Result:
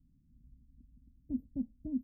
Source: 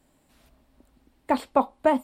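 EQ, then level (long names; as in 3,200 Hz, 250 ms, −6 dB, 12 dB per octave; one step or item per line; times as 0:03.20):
inverse Chebyshev band-stop filter 1,300–6,800 Hz, stop band 80 dB
bass and treble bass +10 dB, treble −3 dB
parametric band 400 Hz −8.5 dB 0.52 octaves
−7.0 dB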